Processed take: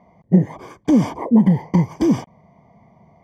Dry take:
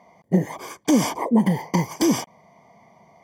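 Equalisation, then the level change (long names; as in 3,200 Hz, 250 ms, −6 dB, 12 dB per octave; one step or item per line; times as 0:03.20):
RIAA equalisation playback
−2.5 dB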